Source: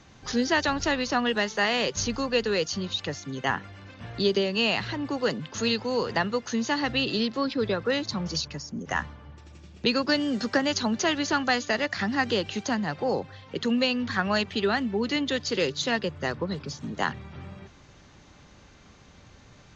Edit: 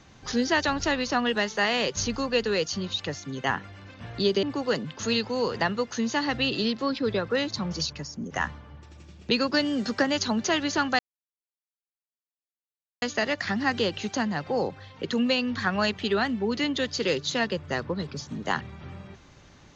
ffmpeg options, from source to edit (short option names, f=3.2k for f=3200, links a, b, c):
-filter_complex "[0:a]asplit=3[a][b][c];[a]atrim=end=4.432[d];[b]atrim=start=4.978:end=11.54,asetpts=PTS-STARTPTS,afade=t=out:st=6.558:d=0.004:c=hsin,apad=pad_dur=2.03[e];[c]atrim=start=11.54,asetpts=PTS-STARTPTS,afade=t=in:d=0.004:c=hsin[f];[e][f]concat=n=2:v=0:a=1[g];[d][g]acrossfade=d=0.004:c1=hsin:c2=hsin"